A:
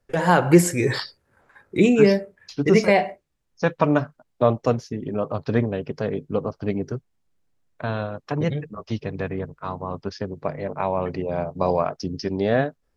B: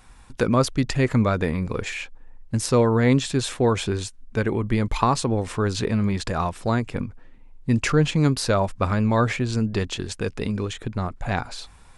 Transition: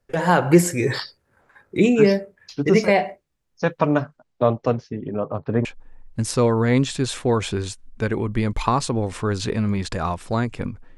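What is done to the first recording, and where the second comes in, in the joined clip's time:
A
4.02–5.65 s: low-pass 10 kHz -> 1.4 kHz
5.65 s: go over to B from 2.00 s

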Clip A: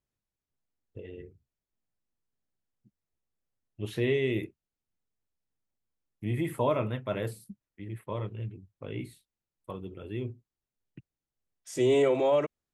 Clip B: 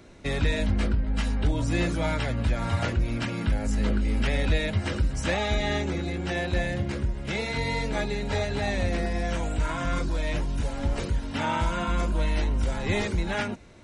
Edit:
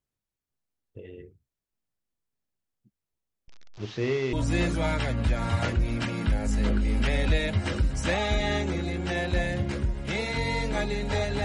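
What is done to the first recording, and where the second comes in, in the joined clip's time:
clip A
3.48–4.33 s: one-bit delta coder 32 kbps, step -38 dBFS
4.33 s: go over to clip B from 1.53 s

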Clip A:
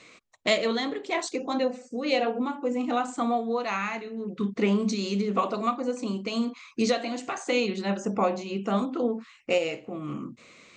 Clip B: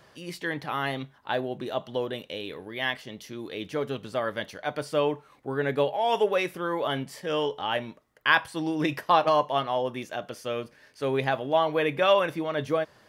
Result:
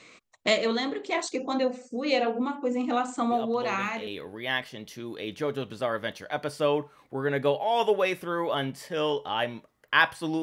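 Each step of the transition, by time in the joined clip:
clip A
3.31 s: add clip B from 1.64 s 0.76 s -6.5 dB
4.07 s: go over to clip B from 2.40 s

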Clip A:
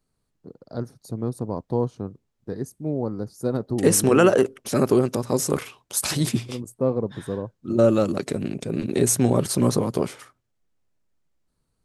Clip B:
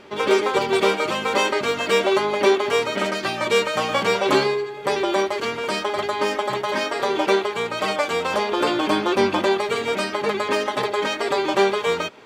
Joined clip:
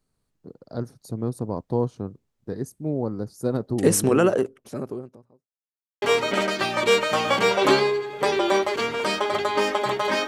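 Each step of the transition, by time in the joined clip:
clip A
3.59–5.49 s: studio fade out
5.49–6.02 s: mute
6.02 s: go over to clip B from 2.66 s

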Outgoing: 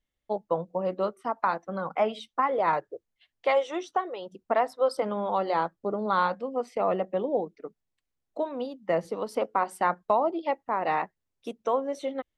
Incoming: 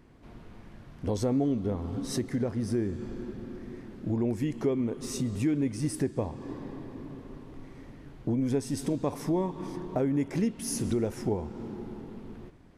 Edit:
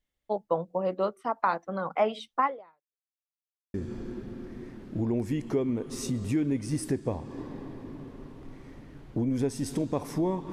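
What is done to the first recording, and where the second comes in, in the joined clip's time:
outgoing
2.46–3.12 s: fade out exponential
3.12–3.74 s: mute
3.74 s: go over to incoming from 2.85 s

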